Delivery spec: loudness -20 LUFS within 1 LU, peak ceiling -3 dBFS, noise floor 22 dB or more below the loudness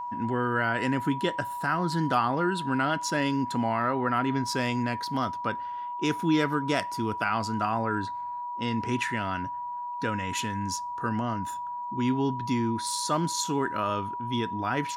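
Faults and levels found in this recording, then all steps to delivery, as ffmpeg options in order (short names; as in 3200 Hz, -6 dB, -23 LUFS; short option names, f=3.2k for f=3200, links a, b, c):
steady tone 970 Hz; tone level -32 dBFS; loudness -28.5 LUFS; peak -12.0 dBFS; loudness target -20.0 LUFS
-> -af "bandreject=f=970:w=30"
-af "volume=8.5dB"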